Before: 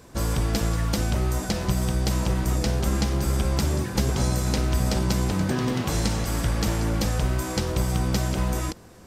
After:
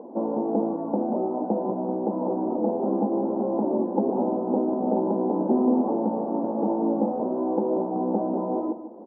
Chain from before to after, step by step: upward compressor, threshold -38 dBFS; Chebyshev band-pass 220–900 Hz, order 4; on a send: feedback delay 150 ms, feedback 34%, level -12 dB; on the sum: trim +7 dB

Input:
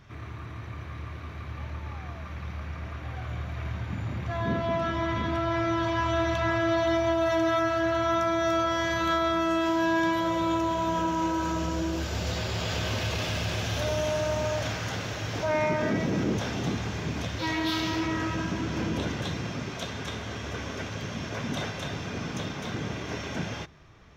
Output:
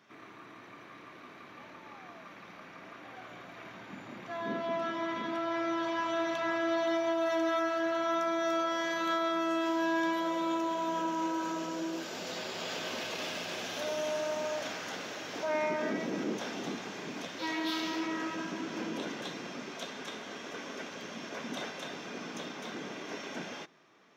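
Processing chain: high-pass 220 Hz 24 dB/octave; trim -5 dB

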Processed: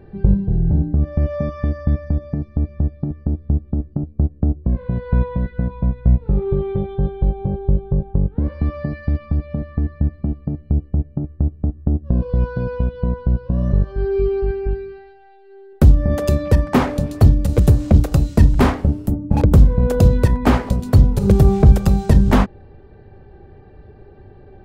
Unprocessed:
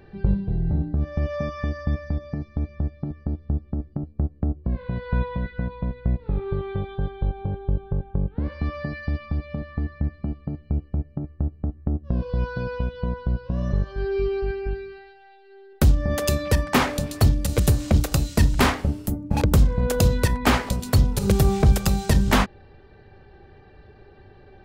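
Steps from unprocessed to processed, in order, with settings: tilt shelf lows +7 dB, about 1.2 kHz; 5.68–8.17 s: doubling 15 ms -6 dB

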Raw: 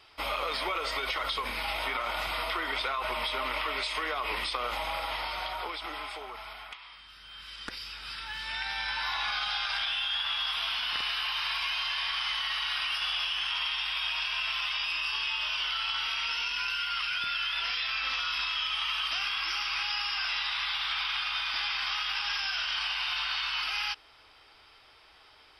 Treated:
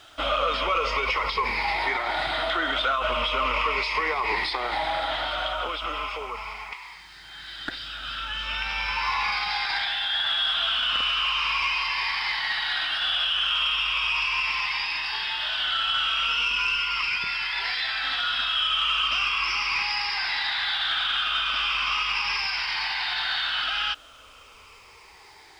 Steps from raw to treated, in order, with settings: drifting ripple filter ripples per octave 0.83, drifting -0.38 Hz, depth 11 dB; added noise violet -49 dBFS; in parallel at +2 dB: saturation -25.5 dBFS, distortion -15 dB; on the sum: distance through air 120 m

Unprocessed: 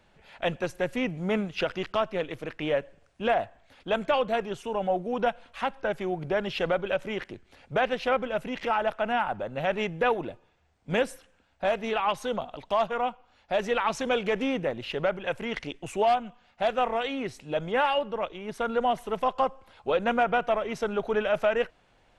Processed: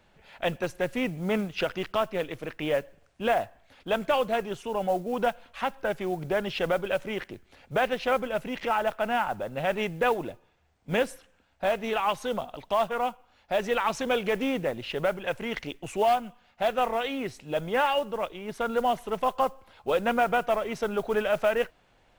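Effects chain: modulation noise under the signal 27 dB

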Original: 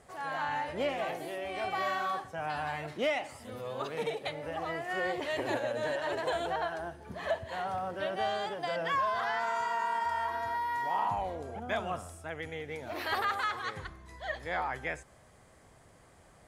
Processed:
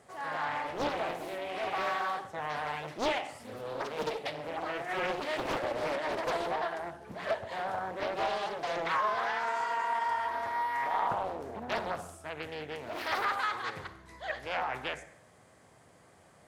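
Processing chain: high-pass 110 Hz 12 dB/octave; on a send at -11.5 dB: reverberation RT60 0.65 s, pre-delay 33 ms; on the sum: loudspeaker Doppler distortion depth 0.86 ms

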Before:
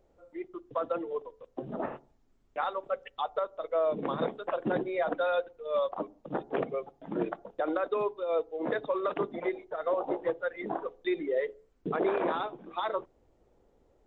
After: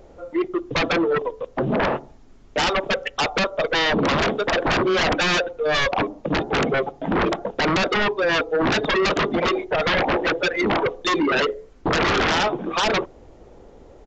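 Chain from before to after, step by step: sine folder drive 16 dB, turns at -16.5 dBFS; resampled via 16 kHz

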